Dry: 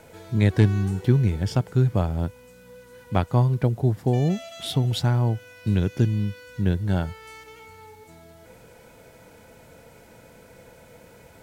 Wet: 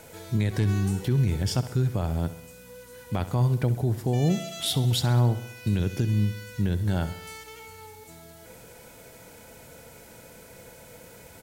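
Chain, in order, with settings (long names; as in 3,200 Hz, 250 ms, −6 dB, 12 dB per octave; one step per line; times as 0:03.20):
high-shelf EQ 4,500 Hz +9.5 dB
brickwall limiter −15.5 dBFS, peak gain reduction 10 dB
on a send: repeating echo 66 ms, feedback 57%, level −14.5 dB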